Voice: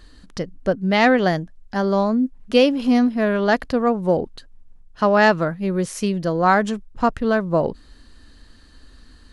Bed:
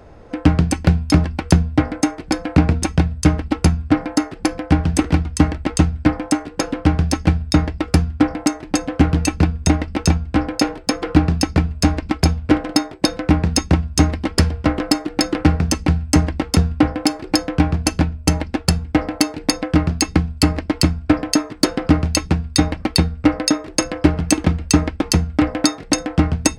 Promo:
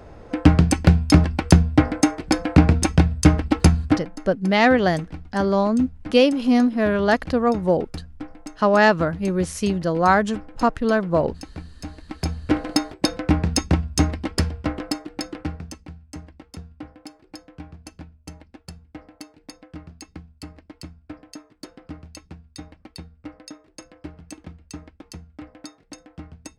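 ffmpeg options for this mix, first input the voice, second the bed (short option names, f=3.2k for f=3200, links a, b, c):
-filter_complex "[0:a]adelay=3600,volume=-0.5dB[a];[1:a]volume=16dB,afade=t=out:st=3.84:d=0.25:silence=0.1,afade=t=in:st=12.01:d=0.64:silence=0.158489,afade=t=out:st=13.83:d=2.04:silence=0.105925[b];[a][b]amix=inputs=2:normalize=0"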